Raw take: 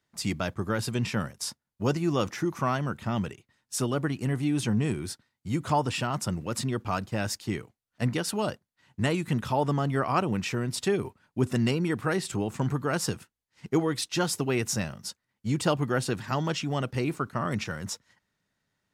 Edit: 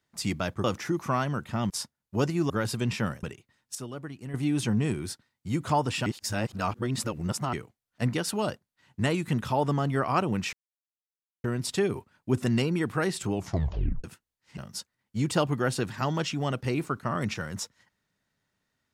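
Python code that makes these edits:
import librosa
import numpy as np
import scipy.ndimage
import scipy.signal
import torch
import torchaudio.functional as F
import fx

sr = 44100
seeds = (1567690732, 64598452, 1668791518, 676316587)

y = fx.edit(x, sr, fx.swap(start_s=0.64, length_s=0.73, other_s=2.17, other_length_s=1.06),
    fx.clip_gain(start_s=3.75, length_s=0.59, db=-10.5),
    fx.reverse_span(start_s=6.06, length_s=1.47),
    fx.insert_silence(at_s=10.53, length_s=0.91),
    fx.tape_stop(start_s=12.42, length_s=0.71),
    fx.cut(start_s=13.67, length_s=1.21), tone=tone)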